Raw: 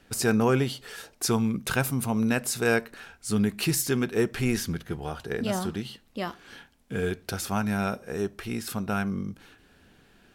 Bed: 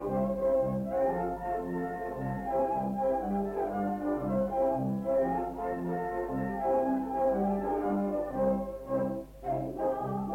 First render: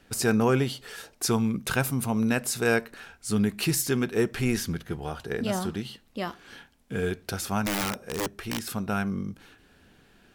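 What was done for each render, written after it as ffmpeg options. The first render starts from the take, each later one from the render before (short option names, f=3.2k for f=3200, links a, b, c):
-filter_complex "[0:a]asplit=3[a][b][c];[a]afade=t=out:st=7.65:d=0.02[d];[b]aeval=exprs='(mod(14.1*val(0)+1,2)-1)/14.1':c=same,afade=t=in:st=7.65:d=0.02,afade=t=out:st=8.69:d=0.02[e];[c]afade=t=in:st=8.69:d=0.02[f];[d][e][f]amix=inputs=3:normalize=0"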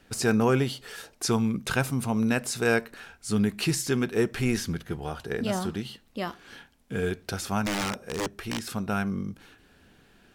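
-filter_complex "[0:a]acrossover=split=9500[a][b];[b]acompressor=threshold=-46dB:ratio=4:attack=1:release=60[c];[a][c]amix=inputs=2:normalize=0"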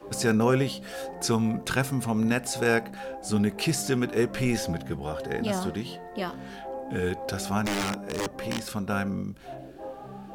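-filter_complex "[1:a]volume=-8.5dB[a];[0:a][a]amix=inputs=2:normalize=0"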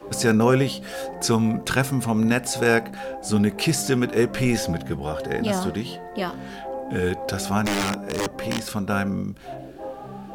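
-af "volume=4.5dB"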